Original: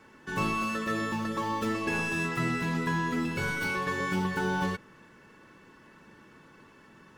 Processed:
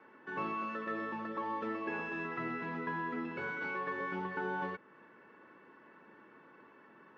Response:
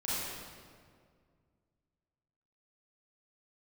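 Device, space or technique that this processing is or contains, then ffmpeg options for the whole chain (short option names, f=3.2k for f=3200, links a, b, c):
parallel compression: -filter_complex "[0:a]highpass=80,lowpass=f=5.7k:w=0.5412,lowpass=f=5.7k:w=1.3066,acrossover=split=240 2400:gain=0.158 1 0.0891[a][b][c];[a][b][c]amix=inputs=3:normalize=0,asplit=2[d][e];[e]acompressor=threshold=-45dB:ratio=6,volume=-2dB[f];[d][f]amix=inputs=2:normalize=0,volume=-6.5dB"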